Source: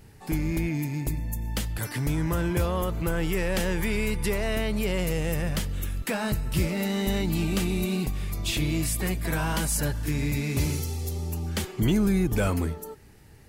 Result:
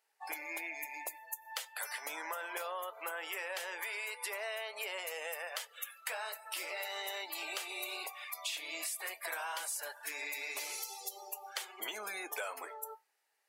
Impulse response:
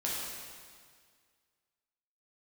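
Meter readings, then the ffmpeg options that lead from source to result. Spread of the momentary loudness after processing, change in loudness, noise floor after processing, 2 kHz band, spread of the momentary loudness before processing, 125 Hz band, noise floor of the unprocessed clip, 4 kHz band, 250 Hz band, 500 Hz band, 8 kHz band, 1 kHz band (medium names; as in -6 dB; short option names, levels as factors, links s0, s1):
4 LU, -12.0 dB, -74 dBFS, -5.0 dB, 6 LU, under -40 dB, -49 dBFS, -6.5 dB, -32.5 dB, -14.5 dB, -7.5 dB, -6.0 dB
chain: -af "highpass=f=630:w=0.5412,highpass=f=630:w=1.3066,afftdn=nr=22:nf=-45,flanger=delay=4.5:depth=2.8:regen=-75:speed=0.19:shape=sinusoidal,acompressor=threshold=0.00562:ratio=6,volume=2.37"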